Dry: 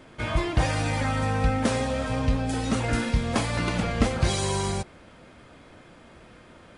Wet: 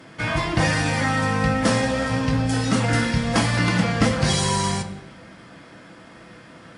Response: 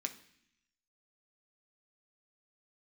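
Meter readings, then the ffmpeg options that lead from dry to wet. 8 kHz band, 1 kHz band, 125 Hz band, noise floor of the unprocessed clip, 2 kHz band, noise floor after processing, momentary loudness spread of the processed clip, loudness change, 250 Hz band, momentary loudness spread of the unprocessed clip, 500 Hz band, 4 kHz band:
+6.0 dB, +5.0 dB, +4.5 dB, -51 dBFS, +7.5 dB, -46 dBFS, 5 LU, +5.0 dB, +5.5 dB, 4 LU, +3.5 dB, +6.5 dB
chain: -filter_complex "[1:a]atrim=start_sample=2205,asetrate=35280,aresample=44100[a];[0:a][a]afir=irnorm=-1:irlink=0,volume=5.5dB"

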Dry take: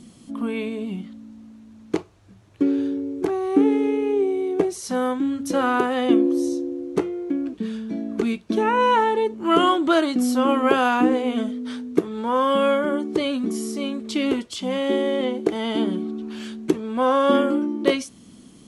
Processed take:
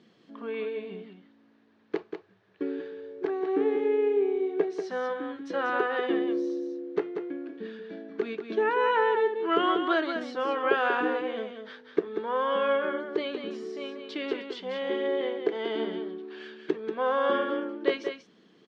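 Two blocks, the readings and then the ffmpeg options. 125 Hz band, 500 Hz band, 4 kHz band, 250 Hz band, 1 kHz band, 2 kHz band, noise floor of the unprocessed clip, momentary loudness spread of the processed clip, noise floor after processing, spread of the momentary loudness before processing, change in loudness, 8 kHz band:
under -15 dB, -4.5 dB, -8.0 dB, -12.0 dB, -7.0 dB, -2.5 dB, -49 dBFS, 13 LU, -62 dBFS, 11 LU, -7.0 dB, under -20 dB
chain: -filter_complex "[0:a]highpass=230,equalizer=f=250:t=q:w=4:g=-9,equalizer=f=430:t=q:w=4:g=7,equalizer=f=1.7k:t=q:w=4:g=9,lowpass=f=4.4k:w=0.5412,lowpass=f=4.4k:w=1.3066,asplit=2[a][b];[b]aecho=0:1:188:0.447[c];[a][c]amix=inputs=2:normalize=0,volume=-8.5dB"

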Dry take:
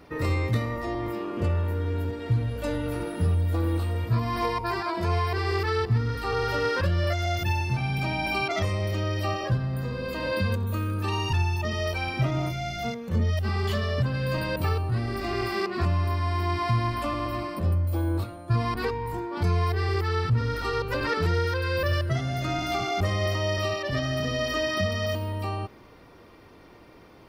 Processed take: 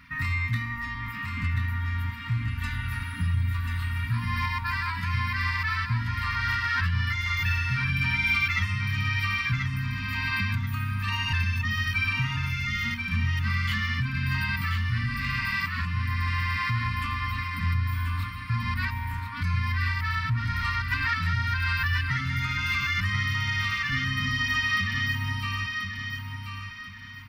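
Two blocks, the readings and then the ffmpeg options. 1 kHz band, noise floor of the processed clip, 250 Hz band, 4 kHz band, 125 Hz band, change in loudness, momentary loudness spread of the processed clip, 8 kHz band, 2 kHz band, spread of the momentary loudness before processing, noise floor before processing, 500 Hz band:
-2.5 dB, -36 dBFS, -6.0 dB, +2.0 dB, -1.5 dB, 0.0 dB, 6 LU, -2.5 dB, +7.0 dB, 5 LU, -51 dBFS, under -40 dB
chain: -filter_complex "[0:a]alimiter=limit=-18.5dB:level=0:latency=1:release=439,equalizer=f=250:t=o:w=1:g=-3,equalizer=f=1k:t=o:w=1:g=-4,equalizer=f=2k:t=o:w=1:g=10,equalizer=f=8k:t=o:w=1:g=-4,afftfilt=real='re*(1-between(b*sr/4096,290,910))':imag='im*(1-between(b*sr/4096,290,910))':win_size=4096:overlap=0.75,asplit=2[a][b];[b]aecho=0:1:1035|2070|3105|4140:0.501|0.17|0.0579|0.0197[c];[a][c]amix=inputs=2:normalize=0"

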